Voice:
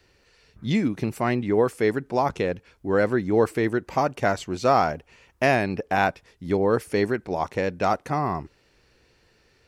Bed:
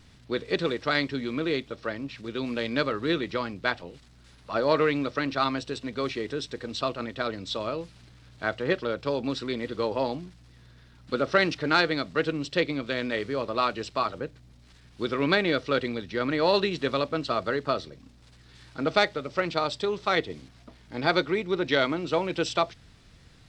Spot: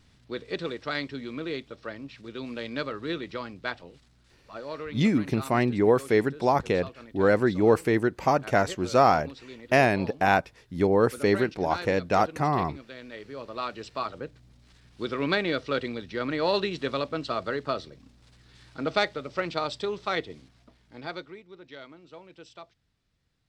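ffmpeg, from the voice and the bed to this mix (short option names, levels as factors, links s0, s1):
-filter_complex "[0:a]adelay=4300,volume=1[s0];[1:a]volume=2,afade=t=out:st=4:d=0.63:silence=0.375837,afade=t=in:st=13.07:d=1.32:silence=0.266073,afade=t=out:st=19.86:d=1.58:silence=0.11885[s1];[s0][s1]amix=inputs=2:normalize=0"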